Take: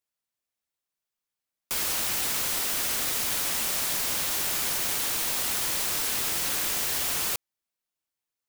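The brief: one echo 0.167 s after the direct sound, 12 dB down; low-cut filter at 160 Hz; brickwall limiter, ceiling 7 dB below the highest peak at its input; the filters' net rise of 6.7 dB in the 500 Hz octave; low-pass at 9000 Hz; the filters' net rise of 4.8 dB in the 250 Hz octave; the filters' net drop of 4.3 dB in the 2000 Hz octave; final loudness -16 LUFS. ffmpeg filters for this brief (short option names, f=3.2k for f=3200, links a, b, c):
-af "highpass=160,lowpass=9k,equalizer=f=250:t=o:g=4.5,equalizer=f=500:t=o:g=7.5,equalizer=f=2k:t=o:g=-6,alimiter=level_in=1.5dB:limit=-24dB:level=0:latency=1,volume=-1.5dB,aecho=1:1:167:0.251,volume=17dB"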